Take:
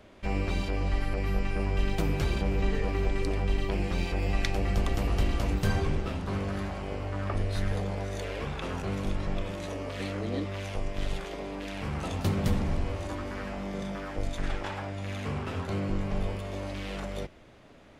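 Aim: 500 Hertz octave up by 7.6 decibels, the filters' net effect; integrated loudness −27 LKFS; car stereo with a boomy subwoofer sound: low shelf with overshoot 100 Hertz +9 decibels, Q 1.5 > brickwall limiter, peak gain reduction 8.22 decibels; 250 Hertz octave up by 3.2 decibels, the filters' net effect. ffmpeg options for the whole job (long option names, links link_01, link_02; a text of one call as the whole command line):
ffmpeg -i in.wav -af "lowshelf=frequency=100:width_type=q:width=1.5:gain=9,equalizer=frequency=250:width_type=o:gain=3.5,equalizer=frequency=500:width_type=o:gain=9,volume=-0.5dB,alimiter=limit=-14dB:level=0:latency=1" out.wav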